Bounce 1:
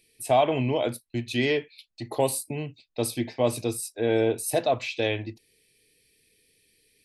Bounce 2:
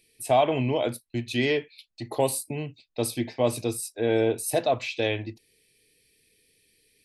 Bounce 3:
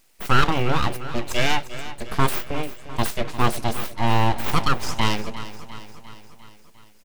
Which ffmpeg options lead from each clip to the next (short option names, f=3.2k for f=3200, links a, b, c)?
-af anull
-af "aeval=exprs='abs(val(0))':c=same,aecho=1:1:351|702|1053|1404|1755|2106:0.2|0.116|0.0671|0.0389|0.0226|0.0131,volume=6.5dB"